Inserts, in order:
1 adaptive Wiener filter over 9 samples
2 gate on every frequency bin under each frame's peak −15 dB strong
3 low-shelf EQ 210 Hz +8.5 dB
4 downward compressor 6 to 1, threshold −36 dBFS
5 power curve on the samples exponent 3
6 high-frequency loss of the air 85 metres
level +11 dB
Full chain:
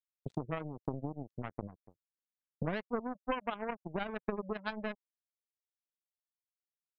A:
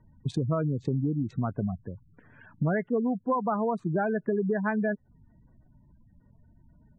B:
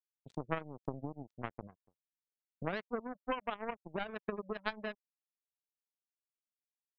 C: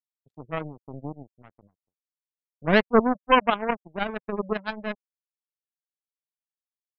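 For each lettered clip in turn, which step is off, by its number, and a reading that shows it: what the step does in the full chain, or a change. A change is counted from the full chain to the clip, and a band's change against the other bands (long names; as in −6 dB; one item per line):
5, change in crest factor −11.0 dB
3, 125 Hz band −4.0 dB
4, average gain reduction 10.0 dB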